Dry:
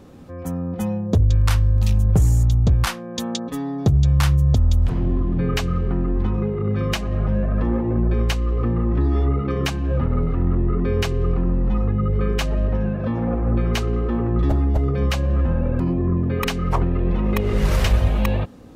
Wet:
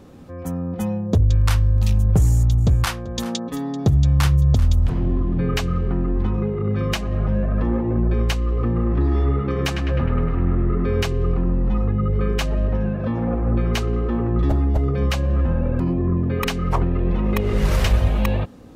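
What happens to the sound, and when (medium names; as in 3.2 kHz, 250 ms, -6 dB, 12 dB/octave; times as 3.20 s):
2.19–4.91 s: delay 388 ms -16.5 dB
8.65–11.02 s: band-passed feedback delay 103 ms, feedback 78%, band-pass 1.6 kHz, level -5 dB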